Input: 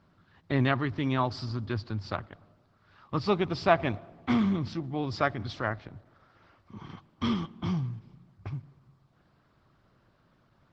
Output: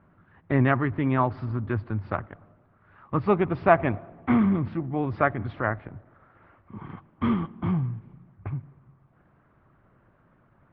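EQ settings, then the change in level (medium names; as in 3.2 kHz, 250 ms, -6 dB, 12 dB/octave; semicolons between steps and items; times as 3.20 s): low-pass 2.2 kHz 24 dB/octave; +4.5 dB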